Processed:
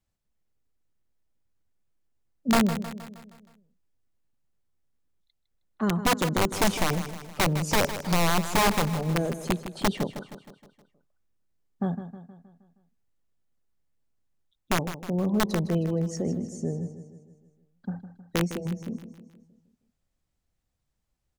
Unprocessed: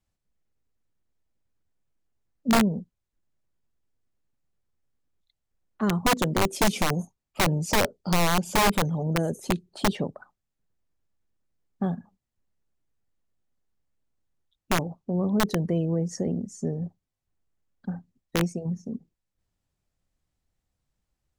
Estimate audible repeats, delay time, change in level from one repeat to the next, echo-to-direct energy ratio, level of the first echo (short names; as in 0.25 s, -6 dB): 5, 0.157 s, -5.5 dB, -10.0 dB, -11.5 dB